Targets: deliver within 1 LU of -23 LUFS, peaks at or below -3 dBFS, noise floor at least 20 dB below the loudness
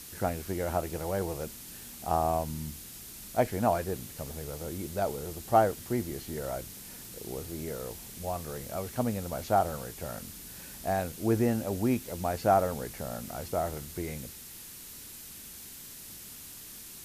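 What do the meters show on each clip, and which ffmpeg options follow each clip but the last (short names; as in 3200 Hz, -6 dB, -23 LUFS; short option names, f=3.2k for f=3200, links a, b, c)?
noise floor -46 dBFS; noise floor target -53 dBFS; loudness -32.5 LUFS; peak -10.5 dBFS; loudness target -23.0 LUFS
-> -af "afftdn=nr=7:nf=-46"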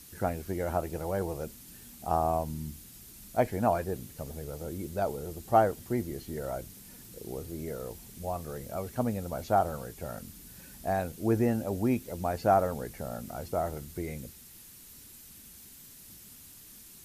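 noise floor -51 dBFS; noise floor target -52 dBFS
-> -af "afftdn=nr=6:nf=-51"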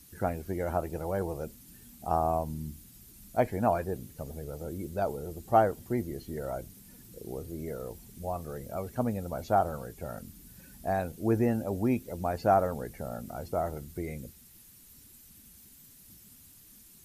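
noise floor -55 dBFS; loudness -32.0 LUFS; peak -11.0 dBFS; loudness target -23.0 LUFS
-> -af "volume=9dB,alimiter=limit=-3dB:level=0:latency=1"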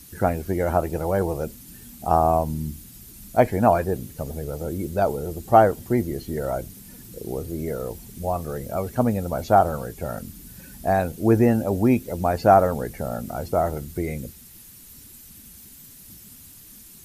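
loudness -23.5 LUFS; peak -3.0 dBFS; noise floor -46 dBFS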